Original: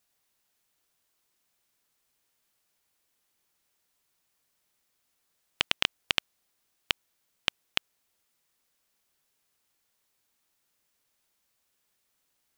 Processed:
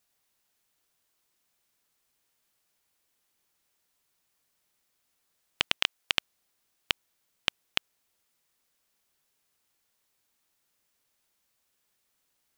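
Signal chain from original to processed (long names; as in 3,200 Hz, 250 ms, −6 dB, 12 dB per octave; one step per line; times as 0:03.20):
0:05.77–0:06.18: low-shelf EQ 360 Hz −9 dB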